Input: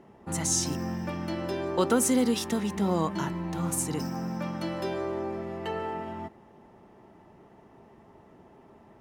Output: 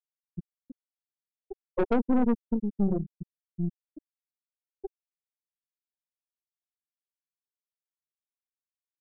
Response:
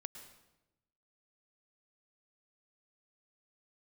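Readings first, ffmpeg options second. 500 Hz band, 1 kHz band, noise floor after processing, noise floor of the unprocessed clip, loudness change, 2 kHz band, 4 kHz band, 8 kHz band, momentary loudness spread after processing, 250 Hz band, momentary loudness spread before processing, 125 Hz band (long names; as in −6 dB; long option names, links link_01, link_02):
−5.0 dB, −8.0 dB, below −85 dBFS, −56 dBFS, 0.0 dB, −9.5 dB, below −20 dB, below −40 dB, 20 LU, −1.5 dB, 11 LU, −4.5 dB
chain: -af "lowpass=frequency=1600:poles=1,afftfilt=real='re*gte(hypot(re,im),0.355)':imag='im*gte(hypot(re,im),0.355)':win_size=1024:overlap=0.75,aeval=exprs='(tanh(25.1*val(0)+0.75)-tanh(0.75))/25.1':channel_layout=same,volume=8dB"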